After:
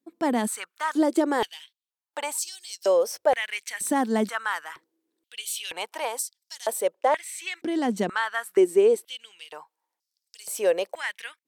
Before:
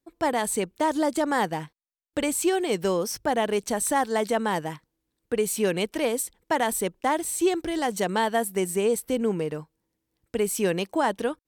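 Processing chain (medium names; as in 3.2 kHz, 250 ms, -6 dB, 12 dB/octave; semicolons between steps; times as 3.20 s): 6.95–9.41 s: treble shelf 10 kHz -11.5 dB; step-sequenced high-pass 2.1 Hz 230–5000 Hz; trim -3 dB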